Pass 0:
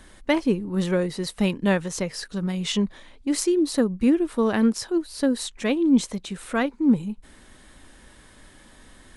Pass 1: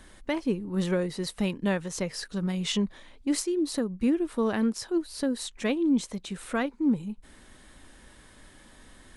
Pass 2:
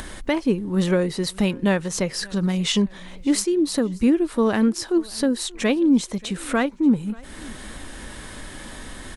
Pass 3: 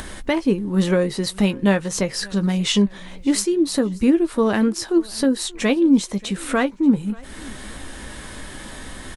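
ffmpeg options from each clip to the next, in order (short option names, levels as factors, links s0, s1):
-af "alimiter=limit=0.188:level=0:latency=1:release=420,volume=0.75"
-filter_complex "[0:a]asplit=2[s0][s1];[s1]acompressor=mode=upward:threshold=0.0447:ratio=2.5,volume=1.19[s2];[s0][s2]amix=inputs=2:normalize=0,aecho=1:1:583|1166:0.0631|0.0233"
-filter_complex "[0:a]asplit=2[s0][s1];[s1]adelay=15,volume=0.282[s2];[s0][s2]amix=inputs=2:normalize=0,volume=1.19"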